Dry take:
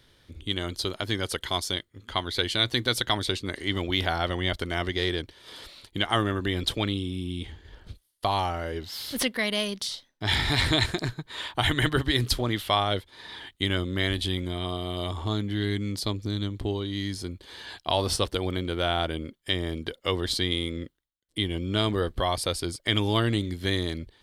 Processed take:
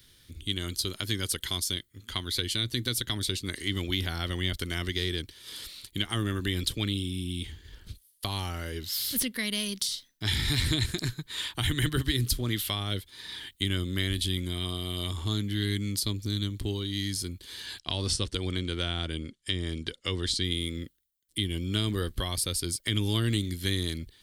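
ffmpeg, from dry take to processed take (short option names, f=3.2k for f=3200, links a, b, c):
-filter_complex "[0:a]asettb=1/sr,asplit=3[a][b][c];[a]atrim=end=17.794[d];[b]atrim=start=17.79:end=20.44,asetpts=PTS-STARTPTS,afade=t=in:d=0.004:c=qsin,afade=t=out:st=2.646:d=0.004:c=qsin,lowpass=f=8.6k:w=0.5412,lowpass=f=8.6k:w=1.3066[e];[c]atrim=start=20.436[f];[d][e]acrossfade=d=0.004:c1=hsin:c2=qsin[g];[g][f]acrossfade=d=0.004:c1=qsin:c2=hsin,aemphasis=mode=production:type=50kf,acrossover=split=460[h][i];[i]acompressor=threshold=-26dB:ratio=6[j];[h][j]amix=inputs=2:normalize=0,equalizer=f=710:t=o:w=1.5:g=-12"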